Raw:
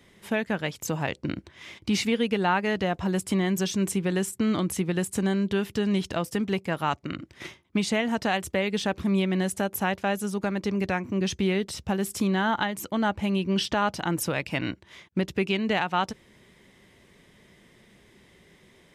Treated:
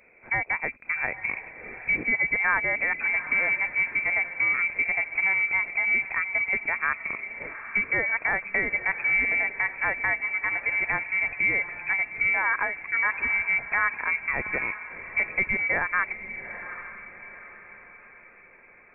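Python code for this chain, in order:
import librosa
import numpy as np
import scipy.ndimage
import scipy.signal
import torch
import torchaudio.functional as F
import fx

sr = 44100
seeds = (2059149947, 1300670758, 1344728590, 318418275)

y = fx.freq_invert(x, sr, carrier_hz=2500)
y = fx.echo_diffused(y, sr, ms=813, feedback_pct=44, wet_db=-12)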